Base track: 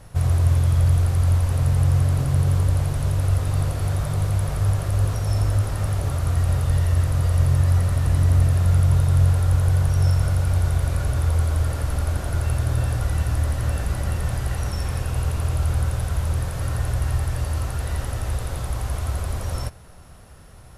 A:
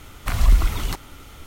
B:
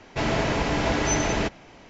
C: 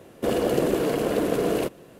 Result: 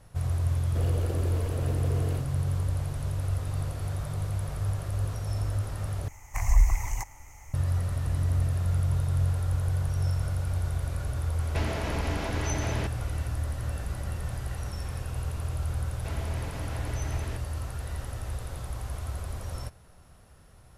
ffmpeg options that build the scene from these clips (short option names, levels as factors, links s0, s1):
-filter_complex "[2:a]asplit=2[s0][s1];[0:a]volume=0.355[s2];[1:a]firequalizer=gain_entry='entry(110,0);entry(160,-14);entry(410,-13);entry(870,6);entry(1400,-15);entry(2000,4);entry(3500,-25);entry(6300,8);entry(9000,-3)':delay=0.05:min_phase=1[s3];[s0]acompressor=threshold=0.0355:ratio=5:attack=3.6:release=354:knee=1:detection=peak[s4];[s1]acompressor=threshold=0.0398:ratio=6:attack=3.2:release=140:knee=1:detection=peak[s5];[s2]asplit=2[s6][s7];[s6]atrim=end=6.084[s8];[s3]atrim=end=1.46,asetpts=PTS-STARTPTS,volume=0.562[s9];[s7]atrim=start=7.536[s10];[3:a]atrim=end=1.99,asetpts=PTS-STARTPTS,volume=0.188,afade=t=in:d=0.004:c=hsin,afade=t=out:st=1.986:d=0.004:c=hsin,adelay=520[s11];[s4]atrim=end=1.89,asetpts=PTS-STARTPTS,afade=t=in:d=0.004:c=hsin,afade=t=out:st=1.886:d=0.004:c=hsin,adelay=11390[s12];[s5]atrim=end=1.89,asetpts=PTS-STARTPTS,volume=0.335,afade=t=in:d=0.004:c=hsin,afade=t=out:st=1.886:d=0.004:c=hsin,adelay=15890[s13];[s8][s9]acrossfade=d=0.004:c1=hsin:c2=hsin[s14];[s14][s10]acrossfade=d=0.004:c1=hsin:c2=hsin[s15];[s15][s11][s12][s13]amix=inputs=4:normalize=0"